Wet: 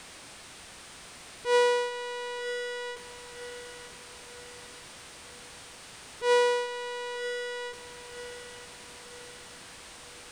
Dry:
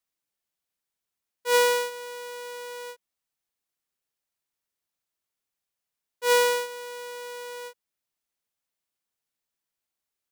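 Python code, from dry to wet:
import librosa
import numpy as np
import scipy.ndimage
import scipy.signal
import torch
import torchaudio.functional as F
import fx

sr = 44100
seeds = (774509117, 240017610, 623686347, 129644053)

y = x + 0.5 * 10.0 ** (-30.5 / 20.0) * np.sign(x)
y = scipy.signal.sosfilt(scipy.signal.butter(2, 51.0, 'highpass', fs=sr, output='sos'), y)
y = fx.peak_eq(y, sr, hz=10000.0, db=9.0, octaves=0.24)
y = np.where(np.abs(y) >= 10.0 ** (-36.5 / 20.0), y, 0.0)
y = fx.formant_shift(y, sr, semitones=-2)
y = fx.air_absorb(y, sr, metres=100.0)
y = fx.echo_feedback(y, sr, ms=939, feedback_pct=42, wet_db=-12)
y = F.gain(torch.from_numpy(y), -2.5).numpy()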